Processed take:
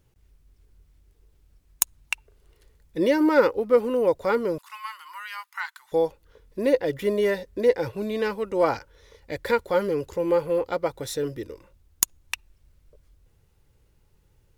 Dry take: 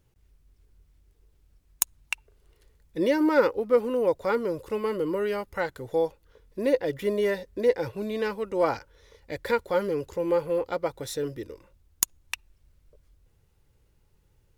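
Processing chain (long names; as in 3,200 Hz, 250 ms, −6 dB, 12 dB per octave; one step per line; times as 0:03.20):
0:04.58–0:05.92: elliptic high-pass filter 980 Hz, stop band 50 dB
level +2.5 dB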